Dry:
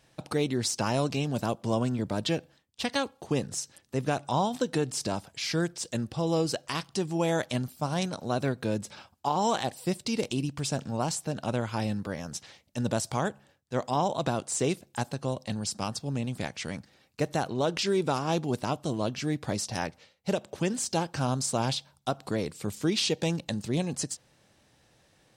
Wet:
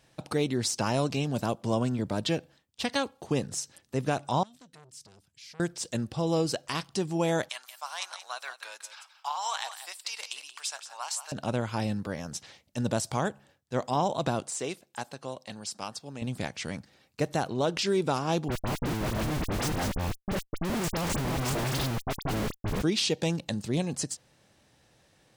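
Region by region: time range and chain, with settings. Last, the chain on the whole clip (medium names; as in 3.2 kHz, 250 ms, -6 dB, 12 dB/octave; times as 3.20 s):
4.43–5.60 s: amplifier tone stack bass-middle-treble 6-0-2 + transformer saturation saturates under 1.6 kHz
7.49–11.32 s: high-pass 950 Hz 24 dB/octave + delay 178 ms -11.5 dB
14.50–16.22 s: low-pass 1 kHz 6 dB/octave + tilt EQ +4.5 dB/octave
18.48–22.82 s: chunks repeated in reverse 206 ms, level -2 dB + Schmitt trigger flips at -30 dBFS + phase dispersion highs, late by 41 ms, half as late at 2.7 kHz
whole clip: none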